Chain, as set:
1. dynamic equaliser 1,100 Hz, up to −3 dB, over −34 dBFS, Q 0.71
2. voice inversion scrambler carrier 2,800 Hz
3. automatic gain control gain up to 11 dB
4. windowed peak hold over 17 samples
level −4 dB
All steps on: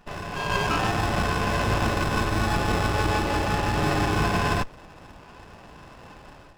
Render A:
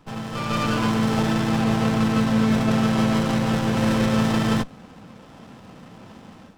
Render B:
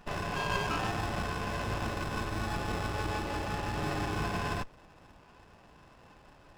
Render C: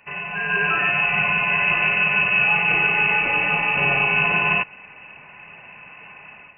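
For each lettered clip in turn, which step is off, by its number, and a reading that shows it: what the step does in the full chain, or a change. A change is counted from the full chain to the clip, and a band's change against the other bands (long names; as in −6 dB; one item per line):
2, 250 Hz band +9.0 dB
3, change in integrated loudness −9.5 LU
4, 2 kHz band +15.0 dB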